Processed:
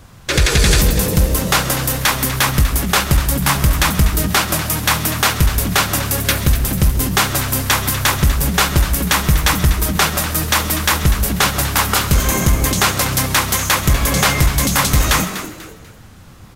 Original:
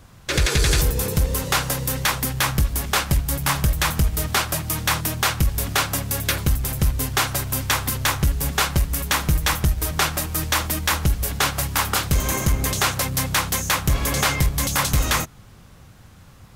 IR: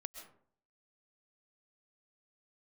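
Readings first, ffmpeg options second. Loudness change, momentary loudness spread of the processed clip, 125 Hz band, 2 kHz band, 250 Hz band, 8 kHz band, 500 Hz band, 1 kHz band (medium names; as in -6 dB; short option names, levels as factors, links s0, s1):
+6.0 dB, 3 LU, +6.0 dB, +6.0 dB, +8.0 dB, +6.0 dB, +6.5 dB, +6.0 dB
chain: -filter_complex "[0:a]asplit=4[s0][s1][s2][s3];[s1]adelay=245,afreqshift=130,volume=0.251[s4];[s2]adelay=490,afreqshift=260,volume=0.0776[s5];[s3]adelay=735,afreqshift=390,volume=0.0243[s6];[s0][s4][s5][s6]amix=inputs=4:normalize=0,asplit=2[s7][s8];[1:a]atrim=start_sample=2205[s9];[s8][s9]afir=irnorm=-1:irlink=0,volume=1.5[s10];[s7][s10]amix=inputs=2:normalize=0"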